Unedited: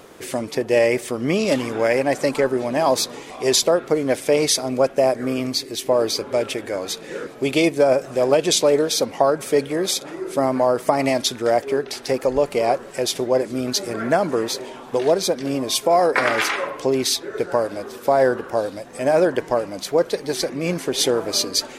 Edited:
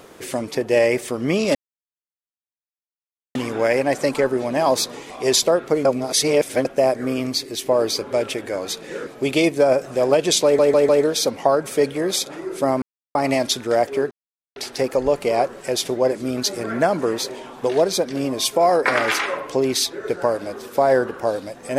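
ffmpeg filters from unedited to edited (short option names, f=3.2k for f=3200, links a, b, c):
-filter_complex "[0:a]asplit=10[a][b][c][d][e][f][g][h][i][j];[a]atrim=end=1.55,asetpts=PTS-STARTPTS,afade=t=out:st=1.546:d=0.004:c=hsin,apad=pad_dur=1.8[k];[b]atrim=start=1.55:end=4.052,asetpts=PTS-STARTPTS,afade=t=in:d=0.004:c=hsin[l];[c]atrim=start=4.048:end=4.852,asetpts=PTS-STARTPTS,areverse[m];[d]atrim=start=4.848:end=8.792[n];[e]atrim=start=8.638:end=8.792[o];[f]atrim=start=8.638:end=8.792[p];[g]atrim=start=8.638:end=10.57,asetpts=PTS-STARTPTS,afade=t=out:st=1.928:d=0.004:c=hsin[q];[h]atrim=start=10.57:end=10.9,asetpts=PTS-STARTPTS,volume=0[r];[i]atrim=start=10.9:end=11.86,asetpts=PTS-STARTPTS,afade=t=in:d=0.004:c=hsin,afade=t=out:st=0.956:d=0.004:c=hsin,apad=pad_dur=0.45[s];[j]atrim=start=11.86,asetpts=PTS-STARTPTS,afade=t=in:d=0.004:c=hsin[t];[k][l]concat=n=2:v=0:a=1[u];[u][m]acrossfade=d=0.004:c1=hsin:c2=hsin[v];[v][n]acrossfade=d=0.004:c1=hsin:c2=hsin[w];[w][o]acrossfade=d=0.004:c1=hsin:c2=hsin[x];[x][p]acrossfade=d=0.004:c1=hsin:c2=hsin[y];[q][r][s][t]concat=n=4:v=0:a=1[z];[y][z]acrossfade=d=0.004:c1=hsin:c2=hsin"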